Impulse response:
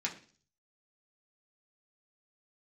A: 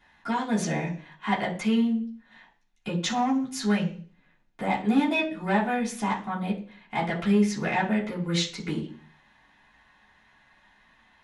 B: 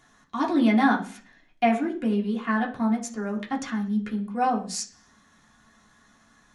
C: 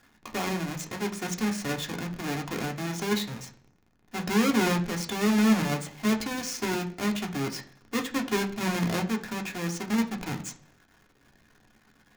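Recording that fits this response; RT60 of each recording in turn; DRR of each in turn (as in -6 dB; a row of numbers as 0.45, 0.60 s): B; 0.45, 0.45, 0.40 s; -12.5, -3.0, 1.5 dB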